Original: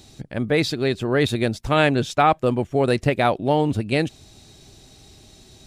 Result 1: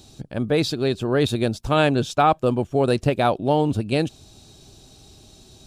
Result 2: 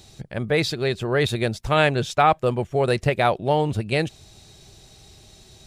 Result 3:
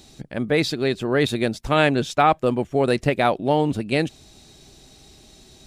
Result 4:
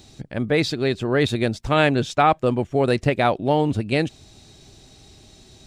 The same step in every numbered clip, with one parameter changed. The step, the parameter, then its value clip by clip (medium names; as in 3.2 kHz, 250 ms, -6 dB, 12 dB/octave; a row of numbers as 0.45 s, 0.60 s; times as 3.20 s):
peaking EQ, frequency: 2 kHz, 270 Hz, 100 Hz, 12 kHz